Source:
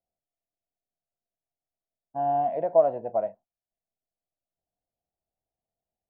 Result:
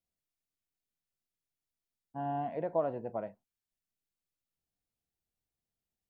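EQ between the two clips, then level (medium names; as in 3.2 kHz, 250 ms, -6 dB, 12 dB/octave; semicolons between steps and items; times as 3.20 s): peaking EQ 660 Hz -14 dB 0.81 oct; +1.0 dB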